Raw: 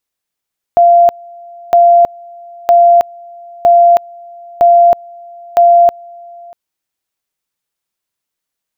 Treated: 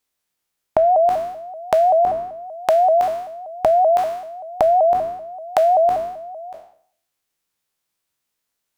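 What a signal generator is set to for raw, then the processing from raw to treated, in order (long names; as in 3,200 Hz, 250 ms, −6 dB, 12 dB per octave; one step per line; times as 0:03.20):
tone at two levels in turn 691 Hz −3 dBFS, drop 27 dB, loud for 0.32 s, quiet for 0.64 s, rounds 6
peak hold with a decay on every bin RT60 0.58 s
downward compressor 3 to 1, threshold −16 dBFS
pitch modulation by a square or saw wave saw up 5.2 Hz, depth 160 cents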